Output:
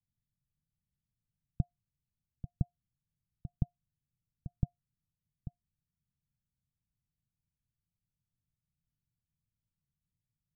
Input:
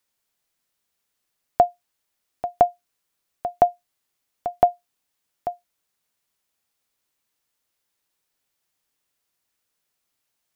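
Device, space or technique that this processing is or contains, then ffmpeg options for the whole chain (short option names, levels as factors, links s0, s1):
the neighbour's flat through the wall: -af "lowpass=f=160:w=0.5412,lowpass=f=160:w=1.3066,equalizer=f=140:t=o:w=0.77:g=4,volume=2.66"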